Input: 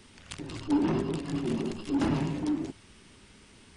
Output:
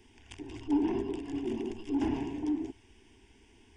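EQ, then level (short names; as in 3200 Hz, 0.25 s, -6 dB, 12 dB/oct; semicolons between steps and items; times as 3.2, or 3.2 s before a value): tape spacing loss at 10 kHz 25 dB; resonant high shelf 2800 Hz +11 dB, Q 1.5; fixed phaser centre 840 Hz, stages 8; 0.0 dB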